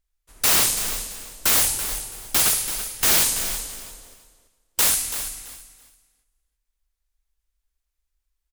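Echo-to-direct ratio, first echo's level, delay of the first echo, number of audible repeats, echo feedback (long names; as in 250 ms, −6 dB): −11.0 dB, −11.0 dB, 333 ms, 2, 21%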